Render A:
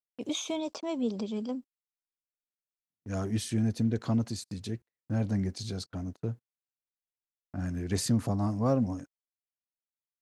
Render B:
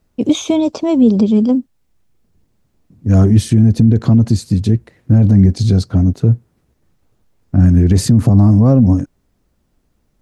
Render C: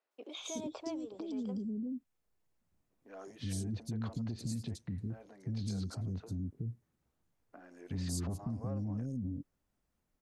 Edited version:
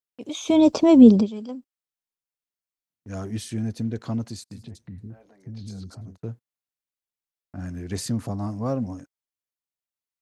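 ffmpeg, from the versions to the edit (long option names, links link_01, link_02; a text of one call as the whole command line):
ffmpeg -i take0.wav -i take1.wav -i take2.wav -filter_complex "[0:a]asplit=3[link_01][link_02][link_03];[link_01]atrim=end=0.64,asetpts=PTS-STARTPTS[link_04];[1:a]atrim=start=0.4:end=1.3,asetpts=PTS-STARTPTS[link_05];[link_02]atrim=start=1.06:end=4.66,asetpts=PTS-STARTPTS[link_06];[2:a]atrim=start=4.5:end=6.18,asetpts=PTS-STARTPTS[link_07];[link_03]atrim=start=6.02,asetpts=PTS-STARTPTS[link_08];[link_04][link_05]acrossfade=duration=0.24:curve1=tri:curve2=tri[link_09];[link_09][link_06]acrossfade=duration=0.24:curve1=tri:curve2=tri[link_10];[link_10][link_07]acrossfade=duration=0.16:curve1=tri:curve2=tri[link_11];[link_11][link_08]acrossfade=duration=0.16:curve1=tri:curve2=tri" out.wav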